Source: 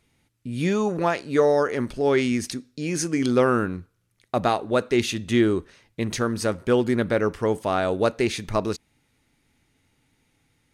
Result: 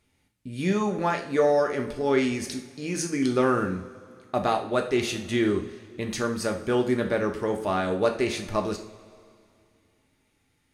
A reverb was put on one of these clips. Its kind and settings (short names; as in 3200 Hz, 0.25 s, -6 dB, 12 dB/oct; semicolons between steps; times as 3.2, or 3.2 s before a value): two-slope reverb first 0.45 s, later 2.5 s, from -18 dB, DRR 2.5 dB; gain -4 dB